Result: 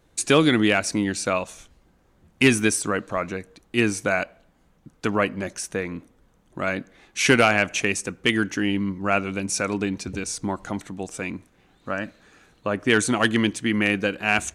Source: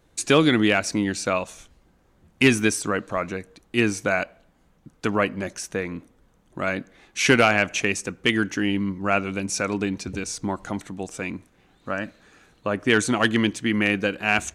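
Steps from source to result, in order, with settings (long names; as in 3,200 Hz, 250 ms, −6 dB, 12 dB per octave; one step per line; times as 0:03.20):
dynamic equaliser 9,400 Hz, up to +5 dB, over −47 dBFS, Q 2.3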